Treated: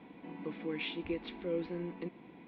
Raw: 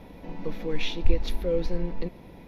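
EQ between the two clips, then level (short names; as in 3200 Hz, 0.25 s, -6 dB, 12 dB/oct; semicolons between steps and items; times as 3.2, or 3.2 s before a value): air absorption 180 m; speaker cabinet 360–2900 Hz, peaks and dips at 410 Hz -6 dB, 610 Hz -9 dB, 880 Hz -9 dB, 1300 Hz -8 dB, 1800 Hz -8 dB, 2600 Hz -4 dB; bell 540 Hz -9 dB 0.54 oct; +4.5 dB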